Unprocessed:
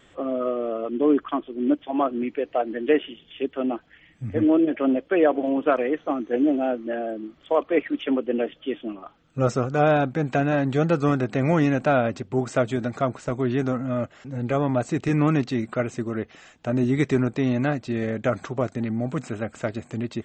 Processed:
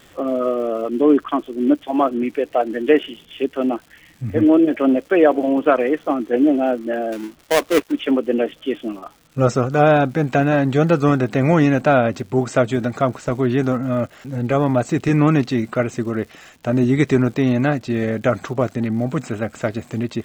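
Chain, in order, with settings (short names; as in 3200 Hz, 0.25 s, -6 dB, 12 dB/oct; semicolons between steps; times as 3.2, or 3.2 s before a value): 7.12–7.92 switching dead time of 0.28 ms; crackle 260/s -43 dBFS; gain +5.5 dB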